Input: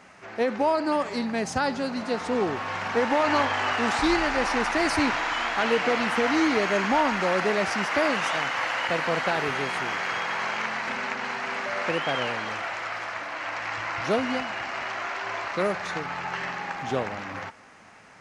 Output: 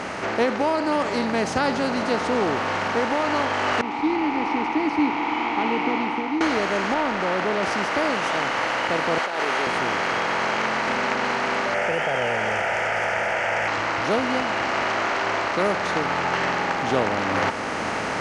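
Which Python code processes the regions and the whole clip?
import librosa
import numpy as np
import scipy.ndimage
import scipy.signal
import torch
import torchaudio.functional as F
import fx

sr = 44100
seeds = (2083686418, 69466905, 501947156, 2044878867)

y = fx.chain(x, sr, fx.vowel_filter(vowel='u'),
    fx.air_absorb(metres=75.0), at=(3.81, 6.41))
y = fx.chain(y, sr, fx.lowpass(hz=2800.0, slope=6),
    fx.transformer_sat(knee_hz=890.0), at=(6.94, 7.63))
y = fx.chain(y, sr, fx.highpass(hz=500.0, slope=12),
    fx.over_compress(threshold_db=-29.0, ratio=-0.5), at=(9.18, 9.67))
y = fx.chain(y, sr, fx.fixed_phaser(hz=1100.0, stages=6),
    fx.env_flatten(amount_pct=70), at=(11.74, 13.68))
y = fx.bin_compress(y, sr, power=0.6)
y = fx.high_shelf(y, sr, hz=9600.0, db=-6.0)
y = fx.rider(y, sr, range_db=10, speed_s=0.5)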